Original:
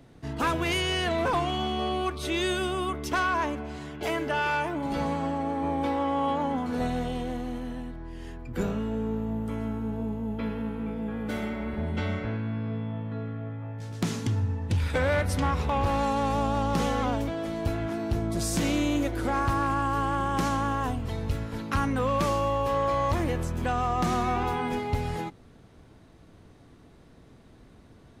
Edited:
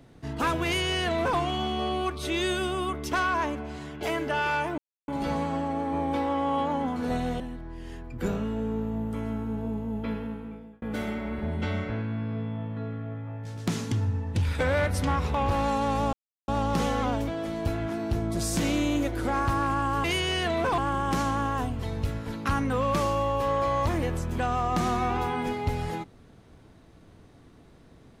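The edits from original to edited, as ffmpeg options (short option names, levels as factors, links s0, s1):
-filter_complex "[0:a]asplit=7[s0][s1][s2][s3][s4][s5][s6];[s0]atrim=end=4.78,asetpts=PTS-STARTPTS,afade=t=out:st=4.776:d=0.004:c=hsin,apad=pad_dur=0.3[s7];[s1]atrim=start=4.78:end=7.102,asetpts=PTS-STARTPTS,afade=t=in:d=0.004:c=hsin[s8];[s2]atrim=start=7.748:end=11.17,asetpts=PTS-STARTPTS,afade=t=out:st=2.702:d=0.72[s9];[s3]atrim=start=11.17:end=16.48,asetpts=PTS-STARTPTS,afade=t=in:d=0.004:c=hsin,afade=t=out:st=5.306:d=0.004:c=hsin,apad=pad_dur=0.35[s10];[s4]atrim=start=16.48:end=20.042,asetpts=PTS-STARTPTS,afade=t=in:d=0.004:c=hsin[s11];[s5]atrim=start=0.648:end=1.392[s12];[s6]atrim=start=20.038[s13];[s7][s8]concat=n=2:v=0:a=1[s14];[s9][s10][s11]concat=n=3:v=0:a=1[s15];[s14][s15]acrossfade=d=0.004:c1=hsin:c2=hsin[s16];[s16][s12]acrossfade=d=0.004:c1=hsin:c2=hsin[s17];[s17][s13]acrossfade=d=0.004:c1=hsin:c2=hsin"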